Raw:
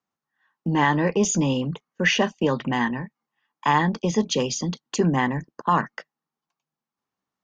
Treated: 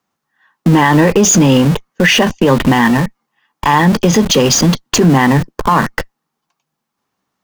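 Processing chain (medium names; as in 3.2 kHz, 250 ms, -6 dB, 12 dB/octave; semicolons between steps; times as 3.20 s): in parallel at -8 dB: Schmitt trigger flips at -36 dBFS; on the sum: loudness maximiser +14.5 dB; trim -1 dB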